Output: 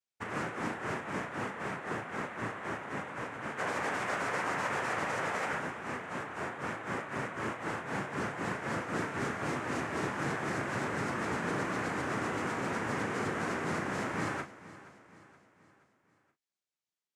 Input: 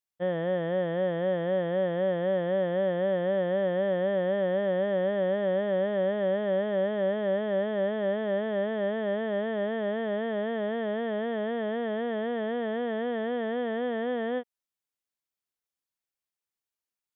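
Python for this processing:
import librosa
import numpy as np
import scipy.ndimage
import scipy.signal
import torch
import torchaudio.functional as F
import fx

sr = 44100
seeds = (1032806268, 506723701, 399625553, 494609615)

y = fx.highpass(x, sr, hz=610.0, slope=12, at=(3.57, 5.59))
y = fx.over_compress(y, sr, threshold_db=-31.0, ratio=-0.5)
y = fx.noise_vocoder(y, sr, seeds[0], bands=3)
y = fx.doubler(y, sr, ms=36.0, db=-8.5)
y = fx.echo_feedback(y, sr, ms=474, feedback_pct=48, wet_db=-17.5)
y = y * librosa.db_to_amplitude(-4.5)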